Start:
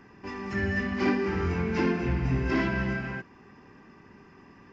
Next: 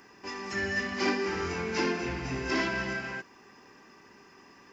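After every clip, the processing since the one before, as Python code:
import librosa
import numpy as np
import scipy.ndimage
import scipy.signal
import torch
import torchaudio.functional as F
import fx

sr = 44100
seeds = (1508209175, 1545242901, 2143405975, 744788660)

y = fx.bass_treble(x, sr, bass_db=-12, treble_db=13)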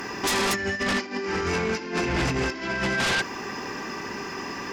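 y = fx.over_compress(x, sr, threshold_db=-37.0, ratio=-0.5)
y = fx.fold_sine(y, sr, drive_db=12, ceiling_db=-20.5)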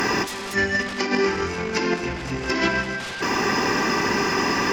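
y = fx.over_compress(x, sr, threshold_db=-30.0, ratio=-0.5)
y = y * 10.0 ** (8.0 / 20.0)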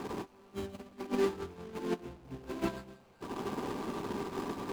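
y = scipy.signal.medfilt(x, 25)
y = fx.upward_expand(y, sr, threshold_db=-34.0, expansion=2.5)
y = y * 10.0 ** (-5.5 / 20.0)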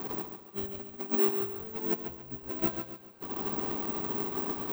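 y = fx.echo_feedback(x, sr, ms=140, feedback_pct=32, wet_db=-8.0)
y = (np.kron(scipy.signal.resample_poly(y, 1, 2), np.eye(2)[0]) * 2)[:len(y)]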